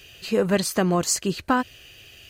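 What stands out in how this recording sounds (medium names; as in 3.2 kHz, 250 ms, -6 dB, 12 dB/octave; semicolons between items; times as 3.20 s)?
noise floor -49 dBFS; spectral tilt -4.0 dB/octave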